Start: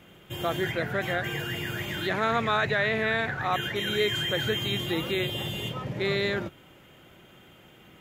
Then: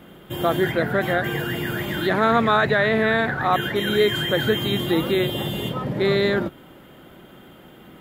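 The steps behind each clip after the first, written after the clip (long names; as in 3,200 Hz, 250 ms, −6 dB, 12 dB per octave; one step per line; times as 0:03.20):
graphic EQ with 15 bands 100 Hz −6 dB, 250 Hz +4 dB, 2,500 Hz −8 dB, 6,300 Hz −10 dB
level +8 dB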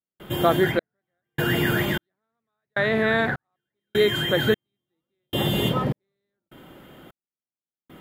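speech leveller within 5 dB 0.5 s
gate pattern ".xxx...xxx..." 76 BPM −60 dB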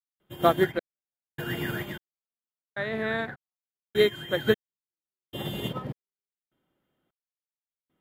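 expander for the loud parts 2.5 to 1, over −36 dBFS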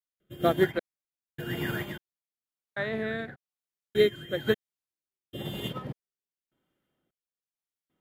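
rotating-speaker cabinet horn 1 Hz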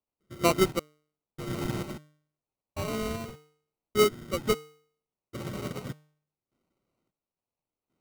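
hum removal 150.2 Hz, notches 6
sample-rate reduction 1,700 Hz, jitter 0%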